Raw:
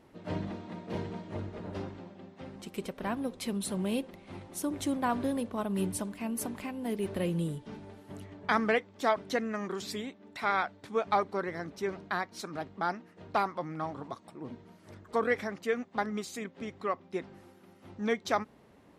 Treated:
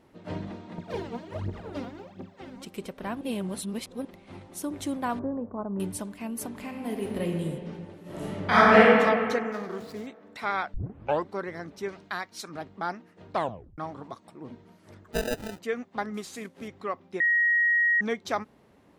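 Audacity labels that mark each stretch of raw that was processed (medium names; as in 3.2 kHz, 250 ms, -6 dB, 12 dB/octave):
0.780000	2.650000	phaser 1.4 Hz, delay 4.4 ms, feedback 75%
3.210000	4.050000	reverse
5.190000	5.800000	low-pass 1.2 kHz 24 dB/octave
6.480000	7.410000	reverb throw, RT60 2.4 s, DRR 2 dB
8.010000	8.930000	reverb throw, RT60 2.1 s, DRR -12 dB
9.520000	10.070000	median filter over 15 samples
10.740000	10.740000	tape start 0.54 s
11.880000	12.490000	tilt shelf lows -4.5 dB, about 1.5 kHz
13.330000	13.330000	tape stop 0.45 s
15.130000	15.590000	sample-rate reducer 1.1 kHz
16.140000	16.680000	CVSD coder 64 kbps
17.200000	18.010000	bleep 1.89 kHz -19.5 dBFS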